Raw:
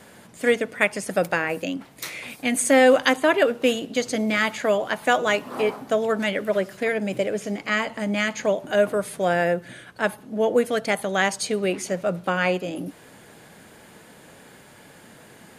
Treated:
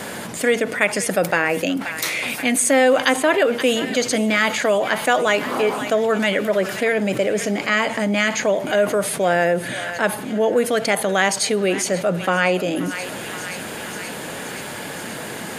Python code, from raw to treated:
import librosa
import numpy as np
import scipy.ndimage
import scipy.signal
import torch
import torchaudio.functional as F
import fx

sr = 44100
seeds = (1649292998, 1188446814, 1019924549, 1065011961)

y = fx.low_shelf(x, sr, hz=110.0, db=-9.0)
y = fx.echo_thinned(y, sr, ms=526, feedback_pct=73, hz=1200.0, wet_db=-17.5)
y = fx.env_flatten(y, sr, amount_pct=50)